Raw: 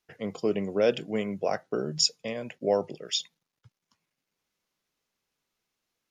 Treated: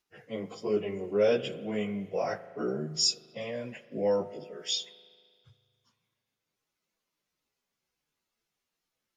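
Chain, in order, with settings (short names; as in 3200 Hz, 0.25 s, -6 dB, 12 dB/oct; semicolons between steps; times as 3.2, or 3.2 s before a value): plain phase-vocoder stretch 1.5×; spring tank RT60 2 s, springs 38 ms, chirp 50 ms, DRR 14 dB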